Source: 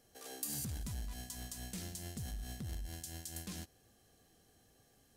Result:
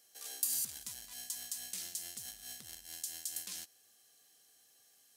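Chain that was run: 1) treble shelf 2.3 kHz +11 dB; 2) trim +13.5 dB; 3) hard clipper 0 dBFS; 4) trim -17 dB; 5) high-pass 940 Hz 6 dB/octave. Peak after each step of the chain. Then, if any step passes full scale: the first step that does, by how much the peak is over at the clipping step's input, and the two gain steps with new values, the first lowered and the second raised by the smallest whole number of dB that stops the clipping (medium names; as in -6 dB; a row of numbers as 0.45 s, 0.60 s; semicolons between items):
-15.5 dBFS, -2.0 dBFS, -2.0 dBFS, -19.0 dBFS, -19.0 dBFS; nothing clips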